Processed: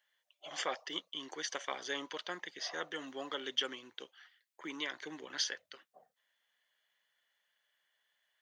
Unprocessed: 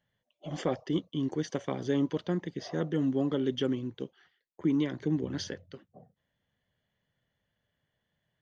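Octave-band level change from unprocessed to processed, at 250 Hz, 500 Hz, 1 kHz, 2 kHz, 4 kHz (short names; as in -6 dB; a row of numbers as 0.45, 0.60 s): -19.5, -11.0, -0.5, +4.5, +5.5 dB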